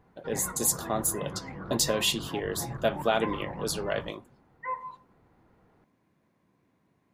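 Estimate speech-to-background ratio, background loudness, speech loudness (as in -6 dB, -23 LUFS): 10.5 dB, -40.0 LUFS, -29.5 LUFS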